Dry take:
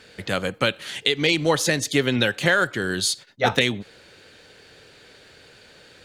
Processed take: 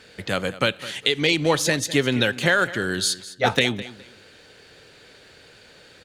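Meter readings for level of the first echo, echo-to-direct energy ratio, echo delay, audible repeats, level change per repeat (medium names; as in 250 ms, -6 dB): -16.5 dB, -16.5 dB, 207 ms, 2, -13.0 dB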